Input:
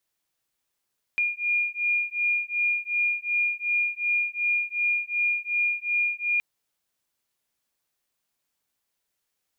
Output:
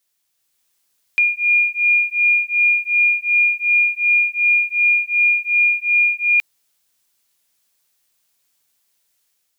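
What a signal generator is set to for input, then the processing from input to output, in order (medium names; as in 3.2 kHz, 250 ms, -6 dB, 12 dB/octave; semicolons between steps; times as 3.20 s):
beating tones 2.42 kHz, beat 2.7 Hz, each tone -26 dBFS 5.22 s
treble shelf 2.3 kHz +9.5 dB; level rider gain up to 4.5 dB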